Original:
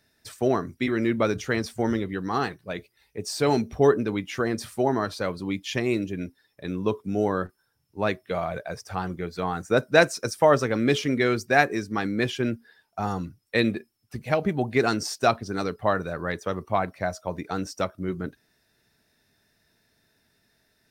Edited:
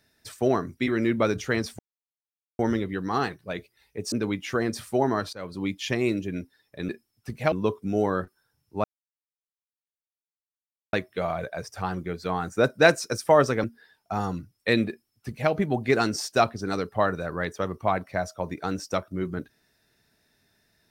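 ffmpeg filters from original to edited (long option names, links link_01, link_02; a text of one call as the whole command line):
ffmpeg -i in.wav -filter_complex "[0:a]asplit=8[link_01][link_02][link_03][link_04][link_05][link_06][link_07][link_08];[link_01]atrim=end=1.79,asetpts=PTS-STARTPTS,afade=type=out:start_time=1.786:duration=0.004:curve=hsin,apad=pad_dur=0.8[link_09];[link_02]atrim=start=1.79:end=3.322,asetpts=PTS-STARTPTS,afade=type=in:duration=0.004:curve=hsin[link_10];[link_03]atrim=start=3.968:end=5.18,asetpts=PTS-STARTPTS,afade=type=out:start_time=1.208:duration=0.004:curve=hsin:silence=0.112202[link_11];[link_04]atrim=start=5.18:end=6.742,asetpts=PTS-STARTPTS,afade=type=in:duration=0.29:silence=0.112202[link_12];[link_05]atrim=start=13.748:end=14.382[link_13];[link_06]atrim=start=6.738:end=8.06,asetpts=PTS-STARTPTS,afade=type=out:start_time=1.318:duration=0.004:curve=hsin,apad=pad_dur=2.09[link_14];[link_07]atrim=start=8.06:end=10.772,asetpts=PTS-STARTPTS,afade=type=in:duration=0.004:curve=hsin[link_15];[link_08]atrim=start=12.508[link_16];[link_09][link_10]concat=n=2:v=0:a=1[link_17];[link_11][link_12]concat=n=2:v=0:a=1[link_18];[link_17][link_18]acrossfade=duration=0.004:curve1=hsin:curve2=hsin[link_19];[link_19][link_13]acrossfade=duration=0.004:curve1=hsin:curve2=hsin[link_20];[link_14][link_15]concat=n=2:v=0:a=1[link_21];[link_20][link_21]acrossfade=duration=0.004:curve1=hsin:curve2=hsin[link_22];[link_22][link_16]acrossfade=duration=0.004:curve1=hsin:curve2=hsin" out.wav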